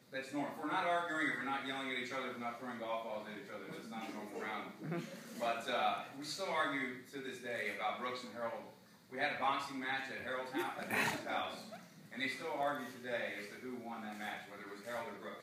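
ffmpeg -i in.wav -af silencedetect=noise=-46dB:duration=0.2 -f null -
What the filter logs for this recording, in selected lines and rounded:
silence_start: 8.70
silence_end: 9.12 | silence_duration: 0.43
silence_start: 11.79
silence_end: 12.12 | silence_duration: 0.33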